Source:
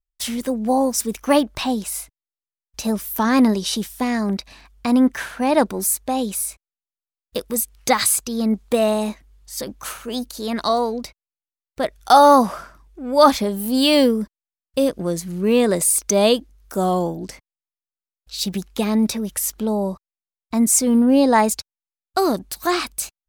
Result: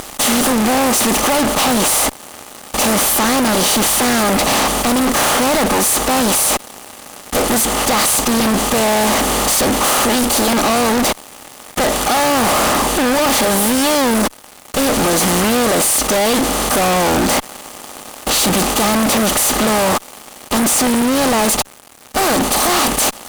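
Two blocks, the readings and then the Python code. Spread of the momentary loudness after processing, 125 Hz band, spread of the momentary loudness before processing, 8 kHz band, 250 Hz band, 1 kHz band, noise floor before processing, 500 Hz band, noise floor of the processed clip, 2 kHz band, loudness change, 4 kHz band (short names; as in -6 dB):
8 LU, +7.0 dB, 14 LU, +9.5 dB, +3.0 dB, +5.0 dB, under -85 dBFS, +3.5 dB, -39 dBFS, +11.5 dB, +5.5 dB, +10.0 dB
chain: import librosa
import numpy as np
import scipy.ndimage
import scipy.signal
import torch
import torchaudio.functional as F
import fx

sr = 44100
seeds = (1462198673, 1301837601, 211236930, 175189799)

p1 = fx.bin_compress(x, sr, power=0.4)
p2 = fx.rider(p1, sr, range_db=10, speed_s=0.5)
p3 = p1 + F.gain(torch.from_numpy(p2), 0.0).numpy()
y = fx.fuzz(p3, sr, gain_db=26.0, gate_db=-32.0)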